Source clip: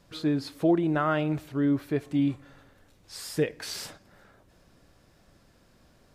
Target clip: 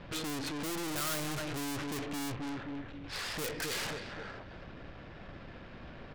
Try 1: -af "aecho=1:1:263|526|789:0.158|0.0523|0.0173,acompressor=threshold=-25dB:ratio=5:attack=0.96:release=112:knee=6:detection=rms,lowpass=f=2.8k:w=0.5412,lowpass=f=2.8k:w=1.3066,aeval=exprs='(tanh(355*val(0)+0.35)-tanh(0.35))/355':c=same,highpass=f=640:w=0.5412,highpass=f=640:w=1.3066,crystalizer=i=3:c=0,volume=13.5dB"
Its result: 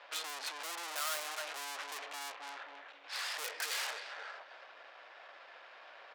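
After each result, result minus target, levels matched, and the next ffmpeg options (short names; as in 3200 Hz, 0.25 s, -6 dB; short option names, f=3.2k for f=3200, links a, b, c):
compressor: peak gain reduction +9.5 dB; 500 Hz band -5.5 dB
-af "lowpass=f=2.8k:w=0.5412,lowpass=f=2.8k:w=1.3066,aecho=1:1:263|526|789:0.158|0.0523|0.0173,aeval=exprs='(tanh(355*val(0)+0.35)-tanh(0.35))/355':c=same,highpass=f=640:w=0.5412,highpass=f=640:w=1.3066,crystalizer=i=3:c=0,volume=13.5dB"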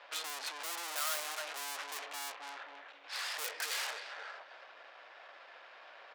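500 Hz band -6.5 dB
-af "lowpass=f=2.8k:w=0.5412,lowpass=f=2.8k:w=1.3066,aecho=1:1:263|526|789:0.158|0.0523|0.0173,aeval=exprs='(tanh(355*val(0)+0.35)-tanh(0.35))/355':c=same,crystalizer=i=3:c=0,volume=13.5dB"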